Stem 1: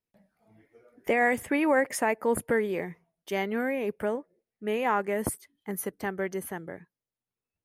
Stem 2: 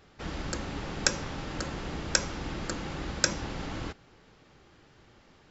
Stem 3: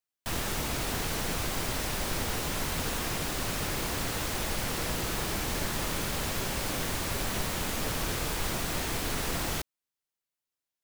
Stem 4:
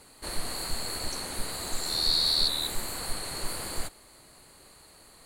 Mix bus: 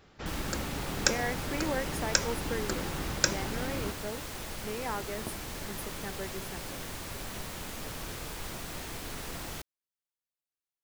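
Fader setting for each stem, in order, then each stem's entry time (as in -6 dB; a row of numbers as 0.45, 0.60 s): -10.0 dB, -0.5 dB, -8.0 dB, off; 0.00 s, 0.00 s, 0.00 s, off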